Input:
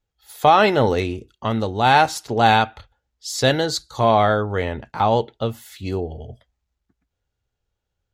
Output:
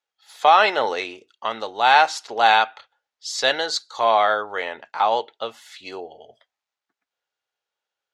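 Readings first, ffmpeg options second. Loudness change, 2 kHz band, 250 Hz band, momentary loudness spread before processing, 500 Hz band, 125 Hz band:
-0.5 dB, +2.0 dB, -15.0 dB, 13 LU, -4.0 dB, under -25 dB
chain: -af "highpass=730,lowpass=6.1k,volume=2dB"

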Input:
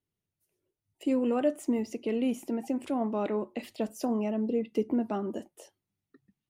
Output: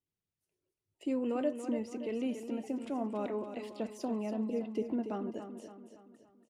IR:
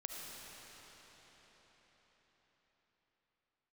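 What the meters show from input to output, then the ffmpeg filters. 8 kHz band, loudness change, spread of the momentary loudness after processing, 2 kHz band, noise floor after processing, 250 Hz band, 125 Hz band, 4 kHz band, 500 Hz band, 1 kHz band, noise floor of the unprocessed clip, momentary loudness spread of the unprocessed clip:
-7.0 dB, -5.5 dB, 11 LU, -5.5 dB, under -85 dBFS, -5.5 dB, n/a, -5.5 dB, -5.5 dB, -5.5 dB, under -85 dBFS, 8 LU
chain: -filter_complex "[0:a]lowpass=9.3k,asplit=2[a][b];[b]aecho=0:1:284|568|852|1136|1420:0.355|0.17|0.0817|0.0392|0.0188[c];[a][c]amix=inputs=2:normalize=0,volume=-6dB"

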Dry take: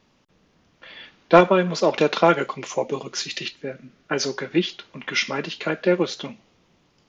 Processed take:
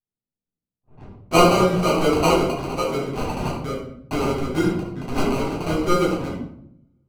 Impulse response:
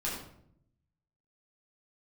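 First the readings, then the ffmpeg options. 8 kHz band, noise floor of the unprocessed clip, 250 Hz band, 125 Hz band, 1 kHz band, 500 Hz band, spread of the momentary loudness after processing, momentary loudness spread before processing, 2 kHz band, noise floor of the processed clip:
n/a, -63 dBFS, +3.5 dB, +6.0 dB, +1.5 dB, 0.0 dB, 13 LU, 18 LU, -3.0 dB, under -85 dBFS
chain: -filter_complex "[0:a]agate=range=-39dB:threshold=-40dB:ratio=16:detection=peak,asplit=2[a][b];[b]acompressor=threshold=-31dB:ratio=6,volume=3dB[c];[a][c]amix=inputs=2:normalize=0,acrusher=samples=25:mix=1:aa=0.000001,adynamicsmooth=sensitivity=5.5:basefreq=680[d];[1:a]atrim=start_sample=2205[e];[d][e]afir=irnorm=-1:irlink=0,volume=-6.5dB"

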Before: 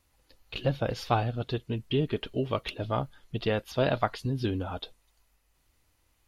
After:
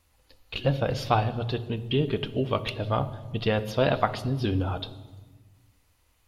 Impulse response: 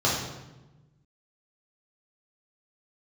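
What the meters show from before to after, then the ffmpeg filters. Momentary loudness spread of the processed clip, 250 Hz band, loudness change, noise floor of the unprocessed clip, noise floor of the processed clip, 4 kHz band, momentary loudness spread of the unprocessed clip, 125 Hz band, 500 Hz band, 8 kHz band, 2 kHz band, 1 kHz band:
7 LU, +2.5 dB, +3.0 dB, -71 dBFS, -66 dBFS, +3.5 dB, 7 LU, +4.0 dB, +3.0 dB, n/a, +3.0 dB, +3.5 dB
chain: -filter_complex "[0:a]asplit=2[a][b];[1:a]atrim=start_sample=2205,asetrate=34398,aresample=44100[c];[b][c]afir=irnorm=-1:irlink=0,volume=-27.5dB[d];[a][d]amix=inputs=2:normalize=0,volume=2.5dB"

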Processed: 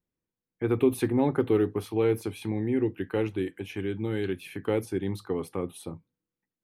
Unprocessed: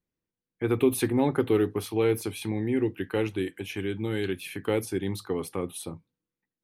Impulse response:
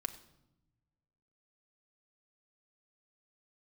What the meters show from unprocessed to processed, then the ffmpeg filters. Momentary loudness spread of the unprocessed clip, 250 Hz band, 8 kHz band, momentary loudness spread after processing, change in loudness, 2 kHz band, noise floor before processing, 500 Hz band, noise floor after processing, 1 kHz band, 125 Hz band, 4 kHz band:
9 LU, 0.0 dB, -7.5 dB, 10 LU, -0.5 dB, -3.5 dB, under -85 dBFS, -0.5 dB, under -85 dBFS, -1.0 dB, 0.0 dB, -5.5 dB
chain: -af "highshelf=f=2.3k:g=-8"

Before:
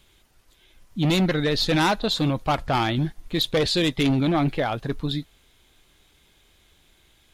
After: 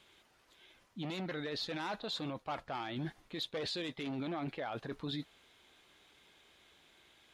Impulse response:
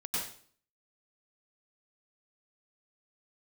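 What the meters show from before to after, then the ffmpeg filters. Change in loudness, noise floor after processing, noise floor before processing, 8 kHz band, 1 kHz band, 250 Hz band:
-16.5 dB, -69 dBFS, -60 dBFS, -18.5 dB, -16.0 dB, -17.5 dB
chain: -af "highpass=f=430:p=1,aemphasis=mode=reproduction:type=50kf,areverse,acompressor=threshold=-32dB:ratio=12,areverse,alimiter=level_in=6.5dB:limit=-24dB:level=0:latency=1:release=16,volume=-6.5dB"

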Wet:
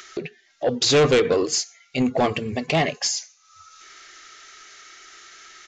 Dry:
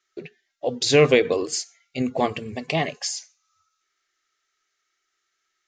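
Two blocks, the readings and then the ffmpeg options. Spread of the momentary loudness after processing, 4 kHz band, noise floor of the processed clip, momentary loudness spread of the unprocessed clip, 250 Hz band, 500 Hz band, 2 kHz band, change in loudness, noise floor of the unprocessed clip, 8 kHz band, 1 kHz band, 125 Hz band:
12 LU, +3.5 dB, -60 dBFS, 17 LU, +2.0 dB, +0.5 dB, 0.0 dB, +1.0 dB, -77 dBFS, +4.0 dB, +2.5 dB, +1.5 dB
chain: -af "aresample=16000,asoftclip=type=tanh:threshold=-18dB,aresample=44100,acompressor=mode=upward:threshold=-31dB:ratio=2.5,volume=5.5dB"

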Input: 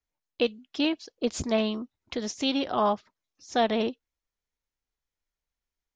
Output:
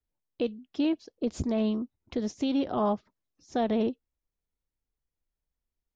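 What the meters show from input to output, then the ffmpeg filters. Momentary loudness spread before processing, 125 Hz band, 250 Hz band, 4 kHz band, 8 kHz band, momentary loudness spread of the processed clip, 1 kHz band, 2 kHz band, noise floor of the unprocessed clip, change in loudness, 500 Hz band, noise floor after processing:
8 LU, +2.5 dB, +1.5 dB, -11.0 dB, -9.5 dB, 7 LU, -5.0 dB, -10.0 dB, under -85 dBFS, -1.5 dB, -2.5 dB, under -85 dBFS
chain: -af "tiltshelf=f=700:g=7,alimiter=limit=-16.5dB:level=0:latency=1:release=31,volume=-2.5dB"

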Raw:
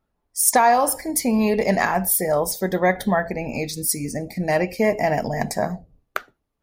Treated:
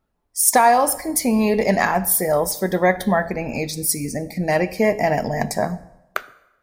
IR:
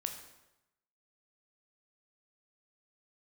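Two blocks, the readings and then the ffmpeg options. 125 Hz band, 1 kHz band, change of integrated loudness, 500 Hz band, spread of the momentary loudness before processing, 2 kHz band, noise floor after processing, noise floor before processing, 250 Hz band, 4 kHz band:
+1.5 dB, +1.5 dB, +1.5 dB, +1.5 dB, 12 LU, +1.5 dB, -70 dBFS, -76 dBFS, +1.5 dB, +1.5 dB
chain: -filter_complex "[0:a]asplit=2[a][b];[1:a]atrim=start_sample=2205[c];[b][c]afir=irnorm=-1:irlink=0,volume=-8dB[d];[a][d]amix=inputs=2:normalize=0,volume=-1dB"

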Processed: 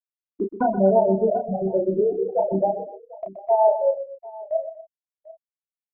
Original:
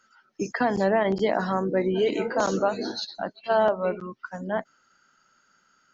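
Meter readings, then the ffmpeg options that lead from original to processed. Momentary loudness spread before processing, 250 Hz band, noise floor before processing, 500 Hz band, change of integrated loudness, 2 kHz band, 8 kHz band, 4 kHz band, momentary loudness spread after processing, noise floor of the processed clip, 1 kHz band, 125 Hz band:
11 LU, +1.5 dB, -66 dBFS, +4.5 dB, +3.5 dB, under -10 dB, n/a, under -40 dB, 18 LU, under -85 dBFS, +2.5 dB, +1.5 dB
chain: -filter_complex "[0:a]lowpass=f=1.8k:p=1,aemphasis=mode=production:type=75kf,bandreject=f=60:t=h:w=6,bandreject=f=120:t=h:w=6,bandreject=f=180:t=h:w=6,bandreject=f=240:t=h:w=6,bandreject=f=300:t=h:w=6,bandreject=f=360:t=h:w=6,bandreject=f=420:t=h:w=6,afftfilt=real='re*gte(hypot(re,im),0.355)':imag='im*gte(hypot(re,im),0.355)':win_size=1024:overlap=0.75,agate=range=-10dB:threshold=-45dB:ratio=16:detection=peak,asubboost=boost=6.5:cutoff=72,asplit=2[a][b];[b]acompressor=threshold=-32dB:ratio=6,volume=0dB[c];[a][c]amix=inputs=2:normalize=0,asplit=2[d][e];[e]adelay=31,volume=-4dB[f];[d][f]amix=inputs=2:normalize=0,aecho=1:1:125|242|744:0.266|0.119|0.1,volume=2dB"

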